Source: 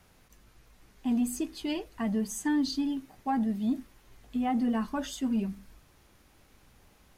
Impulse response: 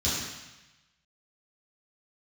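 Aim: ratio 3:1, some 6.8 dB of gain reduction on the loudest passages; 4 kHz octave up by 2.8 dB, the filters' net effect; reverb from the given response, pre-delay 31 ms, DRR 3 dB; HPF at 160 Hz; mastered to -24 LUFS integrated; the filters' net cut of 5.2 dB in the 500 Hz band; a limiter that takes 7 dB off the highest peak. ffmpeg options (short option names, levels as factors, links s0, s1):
-filter_complex "[0:a]highpass=160,equalizer=f=500:t=o:g=-7,equalizer=f=4000:t=o:g=3.5,acompressor=threshold=0.0158:ratio=3,alimiter=level_in=2.66:limit=0.0631:level=0:latency=1,volume=0.376,asplit=2[s0][s1];[1:a]atrim=start_sample=2205,adelay=31[s2];[s1][s2]afir=irnorm=-1:irlink=0,volume=0.224[s3];[s0][s3]amix=inputs=2:normalize=0,volume=3.55"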